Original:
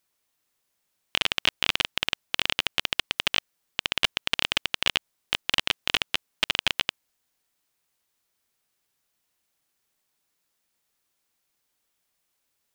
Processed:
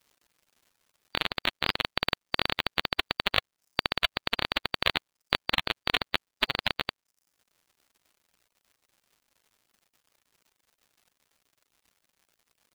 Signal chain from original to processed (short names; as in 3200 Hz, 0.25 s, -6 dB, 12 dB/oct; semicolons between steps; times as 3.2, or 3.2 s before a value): bin magnitudes rounded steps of 30 dB; reverb removal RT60 0.86 s; vocal rider 0.5 s; crackle 220/s -50 dBFS; reverb removal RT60 0.54 s; gain -1 dB